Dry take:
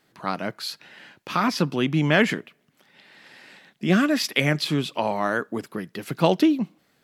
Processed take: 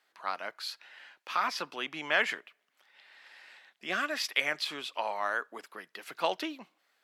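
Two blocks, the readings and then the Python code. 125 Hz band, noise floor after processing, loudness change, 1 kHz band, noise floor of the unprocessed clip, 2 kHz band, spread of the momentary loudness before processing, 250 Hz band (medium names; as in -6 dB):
-32.0 dB, -76 dBFS, -9.0 dB, -6.0 dB, -66 dBFS, -5.0 dB, 14 LU, -22.5 dB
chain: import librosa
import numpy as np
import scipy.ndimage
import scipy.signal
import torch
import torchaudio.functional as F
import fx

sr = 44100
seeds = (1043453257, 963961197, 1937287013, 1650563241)

y = scipy.signal.sosfilt(scipy.signal.butter(2, 810.0, 'highpass', fs=sr, output='sos'), x)
y = fx.high_shelf(y, sr, hz=5400.0, db=-6.5)
y = F.gain(torch.from_numpy(y), -4.0).numpy()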